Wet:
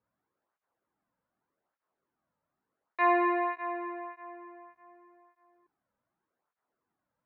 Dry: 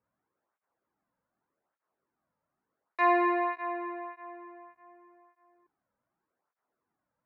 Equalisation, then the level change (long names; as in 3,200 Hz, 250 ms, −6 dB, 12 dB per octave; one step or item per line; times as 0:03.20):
high-frequency loss of the air 370 metres
high-shelf EQ 2,900 Hz +10 dB
0.0 dB